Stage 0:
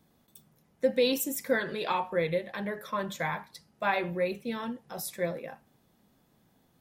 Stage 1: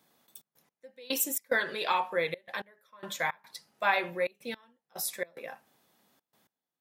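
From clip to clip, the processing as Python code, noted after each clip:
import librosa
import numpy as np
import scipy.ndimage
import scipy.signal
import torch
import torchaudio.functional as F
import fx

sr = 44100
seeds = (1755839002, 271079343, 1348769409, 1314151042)

y = fx.highpass(x, sr, hz=820.0, slope=6)
y = fx.step_gate(y, sr, bpm=109, pattern='xxx.x...xx.xxx', floor_db=-24.0, edge_ms=4.5)
y = y * 10.0 ** (4.0 / 20.0)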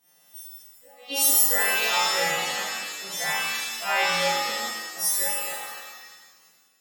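y = fx.freq_snap(x, sr, grid_st=2)
y = fx.rev_shimmer(y, sr, seeds[0], rt60_s=1.3, semitones=7, shimmer_db=-2, drr_db=-9.0)
y = y * 10.0 ** (-8.0 / 20.0)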